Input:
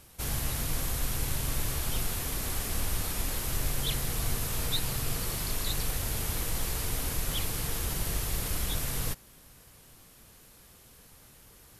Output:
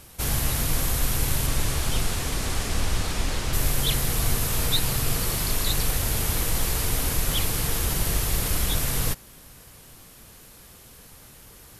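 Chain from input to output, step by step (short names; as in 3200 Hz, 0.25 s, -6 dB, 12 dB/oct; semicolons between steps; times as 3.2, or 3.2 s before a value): 1.46–3.52 LPF 11000 Hz -> 6300 Hz 12 dB/oct; gain +7 dB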